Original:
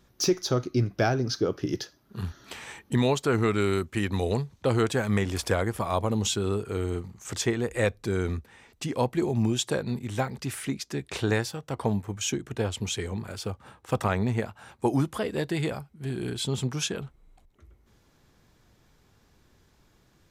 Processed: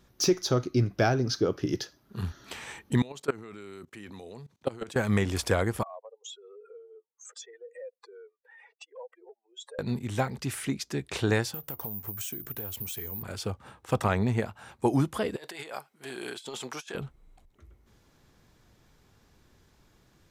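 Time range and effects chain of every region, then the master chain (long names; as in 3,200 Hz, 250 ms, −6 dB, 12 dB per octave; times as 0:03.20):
0:03.02–0:04.96: high-pass filter 160 Hz + output level in coarse steps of 22 dB
0:05.83–0:09.79: expanding power law on the bin magnitudes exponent 2.5 + Butterworth high-pass 480 Hz 72 dB per octave + downward compressor 2.5 to 1, threshold −47 dBFS
0:11.54–0:13.23: downward compressor 12 to 1, threshold −37 dBFS + bad sample-rate conversion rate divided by 3×, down none, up zero stuff
0:15.36–0:16.95: high-pass filter 580 Hz + compressor whose output falls as the input rises −39 dBFS, ratio −0.5
whole clip: no processing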